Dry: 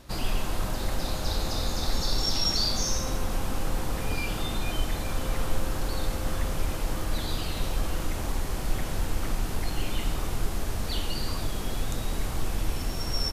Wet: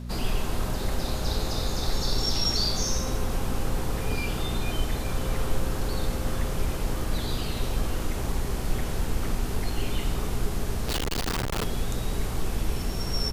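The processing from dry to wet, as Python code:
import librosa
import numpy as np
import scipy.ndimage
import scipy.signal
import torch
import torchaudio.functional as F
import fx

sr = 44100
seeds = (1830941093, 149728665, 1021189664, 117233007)

y = fx.peak_eq(x, sr, hz=410.0, db=6.5, octaves=0.27)
y = fx.dmg_buzz(y, sr, base_hz=60.0, harmonics=4, level_db=-36.0, tilt_db=-4, odd_only=False)
y = fx.schmitt(y, sr, flips_db=-41.5, at=(10.88, 11.64))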